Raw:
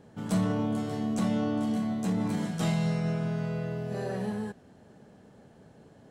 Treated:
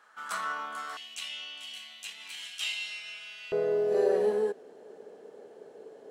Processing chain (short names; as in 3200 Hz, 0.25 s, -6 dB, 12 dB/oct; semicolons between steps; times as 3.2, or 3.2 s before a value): resonant high-pass 1300 Hz, resonance Q 5.2, from 0.97 s 2800 Hz, from 3.52 s 430 Hz